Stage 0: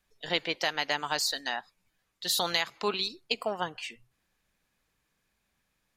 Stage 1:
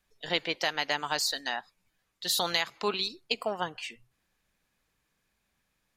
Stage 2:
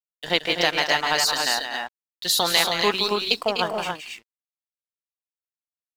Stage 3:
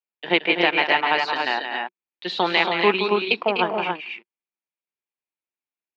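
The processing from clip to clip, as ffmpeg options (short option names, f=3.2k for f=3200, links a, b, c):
-af anull
-filter_complex "[0:a]aeval=exprs='sgn(val(0))*max(abs(val(0))-0.00376,0)':c=same,asplit=2[a][b];[b]aecho=0:1:171|249|278:0.422|0.335|0.562[c];[a][c]amix=inputs=2:normalize=0,volume=7.5dB"
-af "highpass=f=180:w=0.5412,highpass=f=180:w=1.3066,equalizer=f=190:t=q:w=4:g=6,equalizer=f=360:t=q:w=4:g=9,equalizer=f=890:t=q:w=4:g=5,equalizer=f=2.4k:t=q:w=4:g=8,lowpass=f=3.2k:w=0.5412,lowpass=f=3.2k:w=1.3066"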